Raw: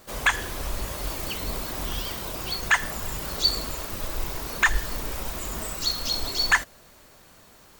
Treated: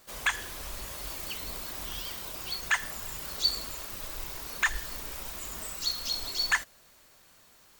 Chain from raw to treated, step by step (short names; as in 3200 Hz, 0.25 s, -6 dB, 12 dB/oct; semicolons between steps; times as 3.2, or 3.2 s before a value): tilt shelf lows -4 dB, about 1100 Hz; gain -8 dB